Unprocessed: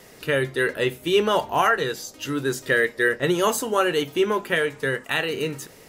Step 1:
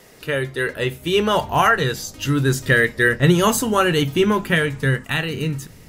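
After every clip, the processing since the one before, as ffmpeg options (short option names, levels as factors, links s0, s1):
-af "dynaudnorm=f=220:g=11:m=2,asubboost=boost=7.5:cutoff=170"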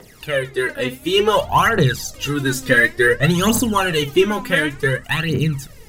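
-af "aphaser=in_gain=1:out_gain=1:delay=4.1:decay=0.72:speed=0.56:type=triangular,volume=0.891"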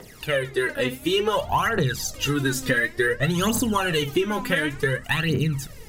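-af "acompressor=threshold=0.112:ratio=6"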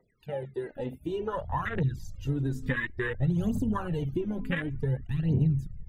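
-af "afftfilt=real='re*gte(hypot(re,im),0.00794)':imag='im*gte(hypot(re,im),0.00794)':win_size=1024:overlap=0.75,asubboost=boost=3.5:cutoff=230,afwtdn=0.0794,volume=0.376"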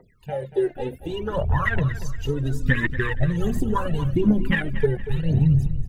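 -af "aphaser=in_gain=1:out_gain=1:delay=2.9:decay=0.7:speed=0.7:type=triangular,aecho=1:1:235|470|705:0.211|0.074|0.0259,volume=1.88"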